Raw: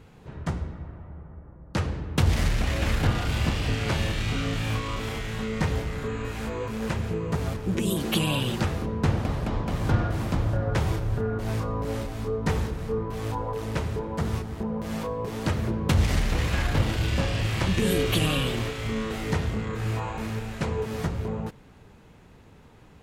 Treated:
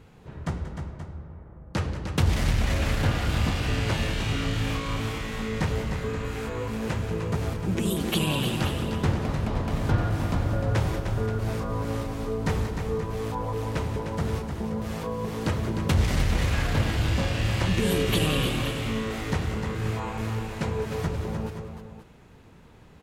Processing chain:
multi-tap delay 184/304/528 ms −13/−7.5/−12 dB
level −1 dB

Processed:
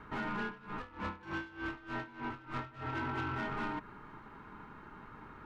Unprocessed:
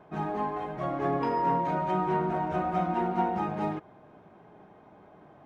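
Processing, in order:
high-pass filter 220 Hz 24 dB per octave
downward compressor 4 to 1, threshold −34 dBFS, peak gain reduction 10 dB
ring modulation 610 Hz
soft clipping −38 dBFS, distortion −11 dB
0:00.45–0:02.93: tremolo with a sine in dB 3.3 Hz, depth 19 dB
level +6.5 dB

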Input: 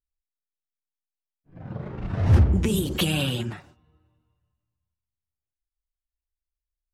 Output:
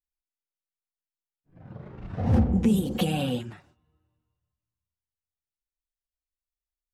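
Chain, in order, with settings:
0:02.18–0:03.39: hollow resonant body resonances 230/500/740 Hz, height 15 dB, ringing for 45 ms
level −8 dB

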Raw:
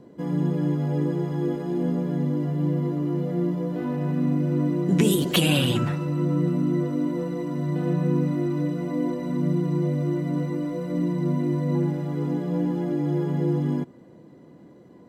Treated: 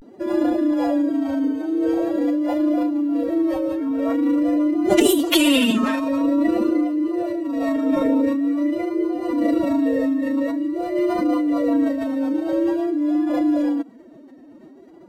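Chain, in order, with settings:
phase-vocoder pitch shift with formants kept +11.5 semitones
pitch vibrato 0.47 Hz 85 cents
level +5 dB

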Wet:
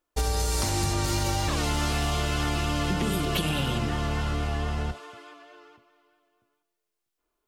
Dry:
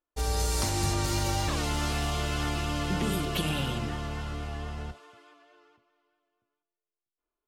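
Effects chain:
downward compressor, threshold −32 dBFS, peak gain reduction 8.5 dB
level +9 dB

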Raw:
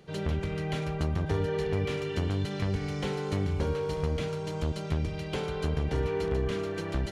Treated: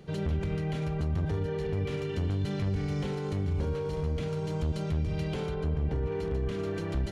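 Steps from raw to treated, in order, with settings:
0:05.54–0:06.12: high-shelf EQ 2,800 Hz −11 dB
brickwall limiter −29 dBFS, peak gain reduction 10 dB
low-shelf EQ 350 Hz +7.5 dB

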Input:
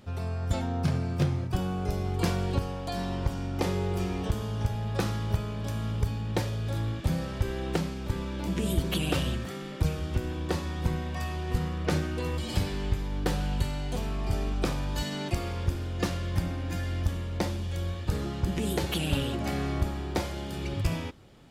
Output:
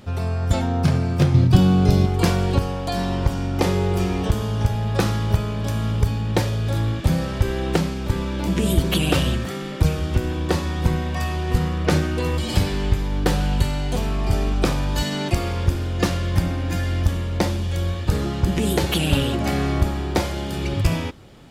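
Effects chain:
0:01.34–0:02.06: octave-band graphic EQ 125/250/4,000 Hz +9/+7/+8 dB
level +8.5 dB

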